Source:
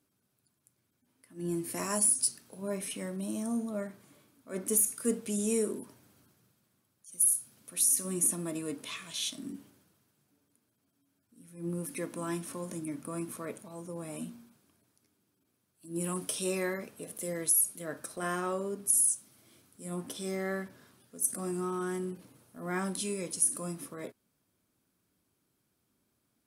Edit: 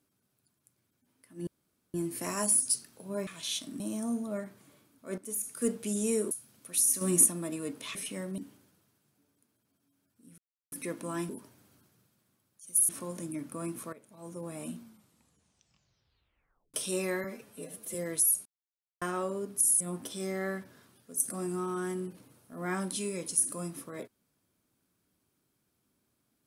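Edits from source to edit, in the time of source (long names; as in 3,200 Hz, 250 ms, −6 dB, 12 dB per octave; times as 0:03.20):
0:01.47: splice in room tone 0.47 s
0:02.80–0:03.23: swap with 0:08.98–0:09.51
0:04.61–0:05.05: fade in quadratic, from −12.5 dB
0:05.74–0:07.34: move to 0:12.42
0:08.04–0:08.29: clip gain +6 dB
0:11.51–0:11.85: silence
0:13.46–0:13.82: fade in quadratic, from −16 dB
0:14.34: tape stop 1.93 s
0:16.77–0:17.24: time-stretch 1.5×
0:17.75–0:18.31: silence
0:19.10–0:19.85: remove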